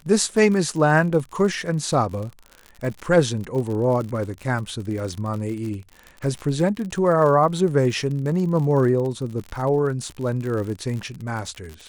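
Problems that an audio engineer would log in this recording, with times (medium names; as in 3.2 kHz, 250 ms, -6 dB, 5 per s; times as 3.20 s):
crackle 58 per s -29 dBFS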